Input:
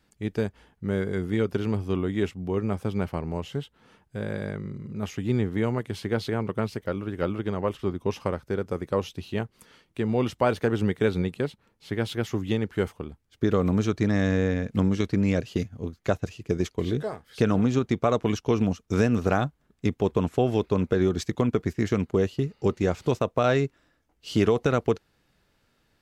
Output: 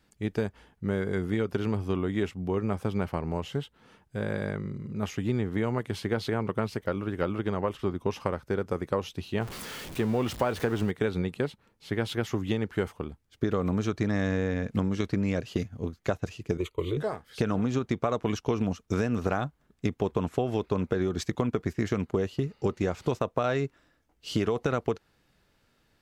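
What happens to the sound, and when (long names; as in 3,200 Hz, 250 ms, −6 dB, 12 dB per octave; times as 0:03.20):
0:09.41–0:10.91: converter with a step at zero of −35 dBFS
0:16.57–0:16.97: phaser with its sweep stopped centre 1,100 Hz, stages 8
whole clip: dynamic equaliser 1,100 Hz, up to +3 dB, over −41 dBFS, Q 0.77; downward compressor, threshold −23 dBFS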